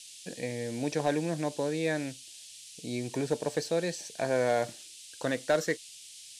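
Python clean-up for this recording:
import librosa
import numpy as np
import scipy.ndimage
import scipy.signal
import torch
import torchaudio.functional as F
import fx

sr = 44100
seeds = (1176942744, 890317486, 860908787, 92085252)

y = fx.fix_declip(x, sr, threshold_db=-18.0)
y = fx.noise_reduce(y, sr, print_start_s=5.87, print_end_s=6.37, reduce_db=27.0)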